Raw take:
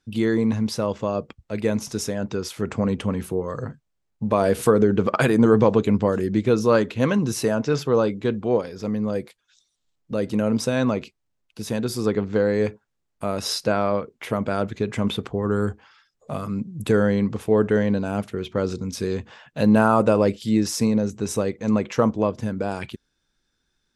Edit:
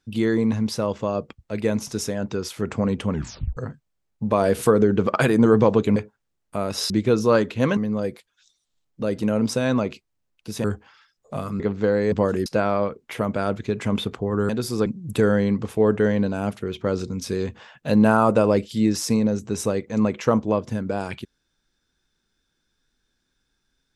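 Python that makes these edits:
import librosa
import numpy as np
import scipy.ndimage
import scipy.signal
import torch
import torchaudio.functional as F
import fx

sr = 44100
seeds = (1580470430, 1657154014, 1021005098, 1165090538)

y = fx.edit(x, sr, fx.tape_stop(start_s=3.11, length_s=0.46),
    fx.swap(start_s=5.96, length_s=0.34, other_s=12.64, other_length_s=0.94),
    fx.cut(start_s=7.17, length_s=1.71),
    fx.swap(start_s=11.75, length_s=0.37, other_s=15.61, other_length_s=0.96), tone=tone)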